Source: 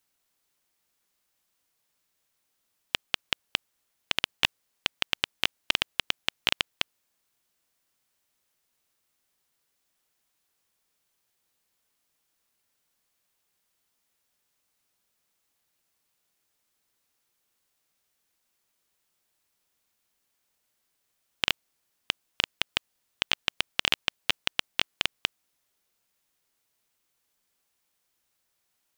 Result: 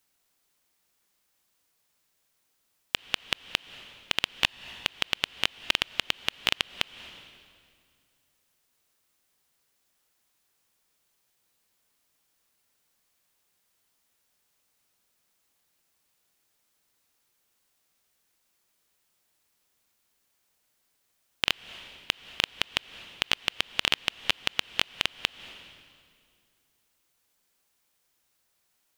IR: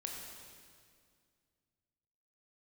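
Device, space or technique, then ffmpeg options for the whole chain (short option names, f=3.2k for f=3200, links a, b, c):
ducked reverb: -filter_complex "[0:a]asplit=3[a][b][c];[1:a]atrim=start_sample=2205[d];[b][d]afir=irnorm=-1:irlink=0[e];[c]apad=whole_len=1277752[f];[e][f]sidechaincompress=threshold=-39dB:ratio=20:attack=26:release=177,volume=-4.5dB[g];[a][g]amix=inputs=2:normalize=0"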